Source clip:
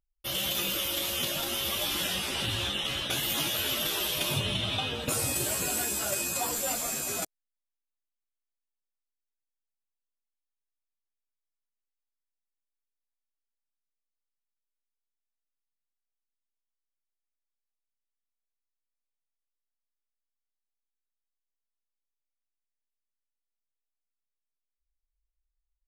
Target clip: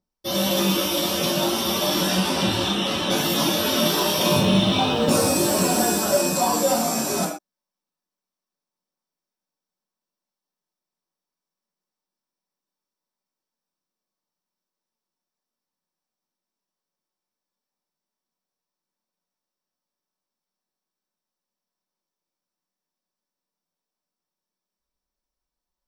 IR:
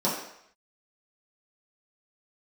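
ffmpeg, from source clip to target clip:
-filter_complex "[0:a]asettb=1/sr,asplit=3[s0][s1][s2];[s0]atrim=end=3.744[s3];[s1]atrim=start=3.74:end=5.99,asetpts=PTS-STARTPTS,afade=t=in:d=0.004:c=qsin,afade=t=out:st=2.246:d=0.004:c=qsin,aeval=exprs='val(0)+0.5*0.00794*sgn(val(0))':c=same[s4];[s2]atrim=start=5.986[s5];[s3][s4]acrossfade=d=0.004:c1=hsin:c2=qsin[s6];[s6][s5]acrossfade=d=0.004:c1=qsin:c2=hsin[s7];[1:a]atrim=start_sample=2205,atrim=end_sample=6174[s8];[s7][s8]afir=irnorm=-1:irlink=0,volume=0.841"

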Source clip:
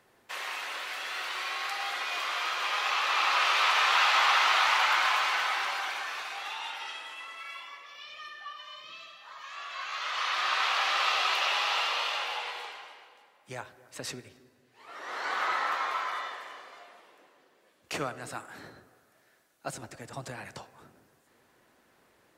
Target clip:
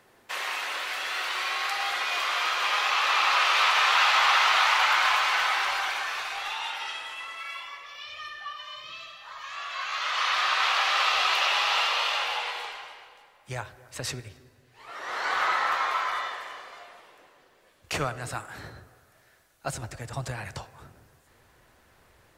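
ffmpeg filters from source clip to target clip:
-filter_complex "[0:a]asubboost=boost=7:cutoff=88,asplit=2[s0][s1];[s1]alimiter=limit=0.1:level=0:latency=1:release=302,volume=0.75[s2];[s0][s2]amix=inputs=2:normalize=0"

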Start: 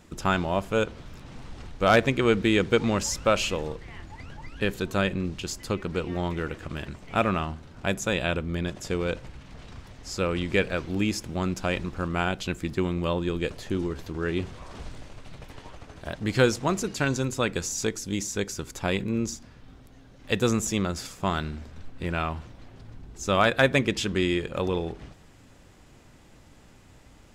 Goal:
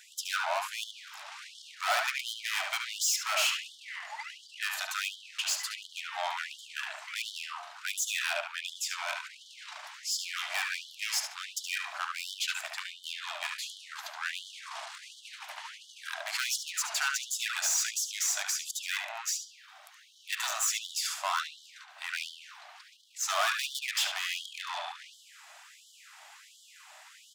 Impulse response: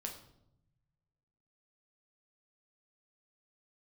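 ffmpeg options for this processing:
-filter_complex "[0:a]equalizer=f=330:t=o:w=2.6:g=-4,aeval=exprs='(tanh(44.7*val(0)+0.35)-tanh(0.35))/44.7':c=same,asplit=2[s0][s1];[s1]adelay=72,lowpass=f=3200:p=1,volume=0.708,asplit=2[s2][s3];[s3]adelay=72,lowpass=f=3200:p=1,volume=0.4,asplit=2[s4][s5];[s5]adelay=72,lowpass=f=3200:p=1,volume=0.4,asplit=2[s6][s7];[s7]adelay=72,lowpass=f=3200:p=1,volume=0.4,asplit=2[s8][s9];[s9]adelay=72,lowpass=f=3200:p=1,volume=0.4[s10];[s0][s2][s4][s6][s8][s10]amix=inputs=6:normalize=0,afftfilt=real='re*gte(b*sr/1024,570*pow(3000/570,0.5+0.5*sin(2*PI*1.4*pts/sr)))':imag='im*gte(b*sr/1024,570*pow(3000/570,0.5+0.5*sin(2*PI*1.4*pts/sr)))':win_size=1024:overlap=0.75,volume=2.66"

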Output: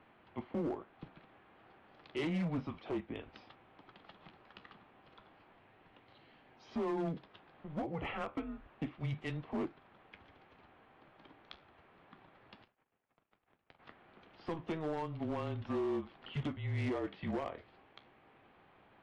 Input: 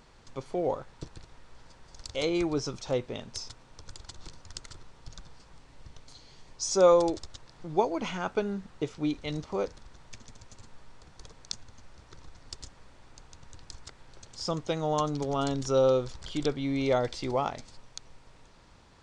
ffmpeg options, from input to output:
-filter_complex "[0:a]asplit=3[s0][s1][s2];[s0]afade=t=out:st=12.62:d=0.02[s3];[s1]aeval=exprs='0.0668*(cos(1*acos(clip(val(0)/0.0668,-1,1)))-cos(1*PI/2))+0.0211*(cos(3*acos(clip(val(0)/0.0668,-1,1)))-cos(3*PI/2))+0.00188*(cos(4*acos(clip(val(0)/0.0668,-1,1)))-cos(4*PI/2))+0.00668*(cos(6*acos(clip(val(0)/0.0668,-1,1)))-cos(6*PI/2))+0.000841*(cos(8*acos(clip(val(0)/0.0668,-1,1)))-cos(8*PI/2))':c=same,afade=t=in:st=12.62:d=0.02,afade=t=out:st=13.78:d=0.02[s4];[s2]afade=t=in:st=13.78:d=0.02[s5];[s3][s4][s5]amix=inputs=3:normalize=0,highpass=f=270:t=q:w=0.5412,highpass=f=270:t=q:w=1.307,lowpass=f=3100:t=q:w=0.5176,lowpass=f=3100:t=q:w=0.7071,lowpass=f=3100:t=q:w=1.932,afreqshift=-160,flanger=delay=7.1:depth=8.8:regen=-67:speed=0.31:shape=triangular,alimiter=level_in=1.58:limit=0.0631:level=0:latency=1:release=341,volume=0.631,volume=47.3,asoftclip=hard,volume=0.0211,volume=1.26" -ar 24000 -c:a aac -b:a 48k

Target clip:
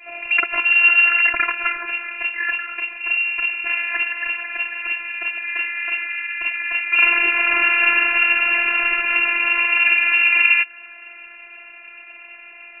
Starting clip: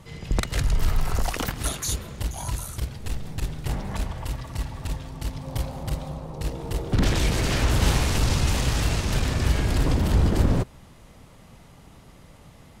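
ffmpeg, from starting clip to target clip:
-filter_complex "[0:a]bandreject=f=1900:w=20,lowpass=f=2300:t=q:w=0.5098,lowpass=f=2300:t=q:w=0.6013,lowpass=f=2300:t=q:w=0.9,lowpass=f=2300:t=q:w=2.563,afreqshift=-2700,asplit=2[s0][s1];[s1]acompressor=threshold=0.0224:ratio=20,volume=0.891[s2];[s0][s2]amix=inputs=2:normalize=0,afftfilt=real='hypot(re,im)*cos(PI*b)':imag='0':win_size=512:overlap=0.75,adynamicequalizer=threshold=0.00501:dfrequency=1600:dqfactor=2.6:tfrequency=1600:tqfactor=2.6:attack=5:release=100:ratio=0.375:range=3.5:mode=boostabove:tftype=bell,volume=2.66"

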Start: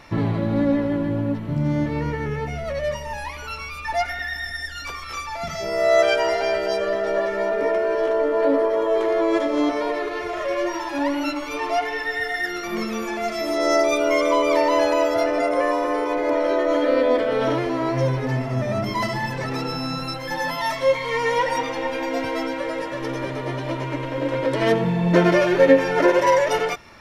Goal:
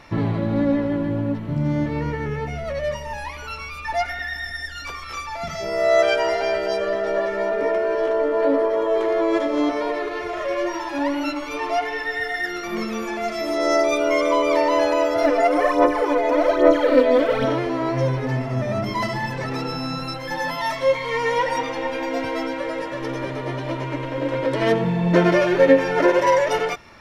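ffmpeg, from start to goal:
-filter_complex "[0:a]highshelf=f=7500:g=-4.5,asplit=3[s0][s1][s2];[s0]afade=t=out:st=15.22:d=0.02[s3];[s1]aphaser=in_gain=1:out_gain=1:delay=4.5:decay=0.67:speed=1.2:type=sinusoidal,afade=t=in:st=15.22:d=0.02,afade=t=out:st=17.44:d=0.02[s4];[s2]afade=t=in:st=17.44:d=0.02[s5];[s3][s4][s5]amix=inputs=3:normalize=0"

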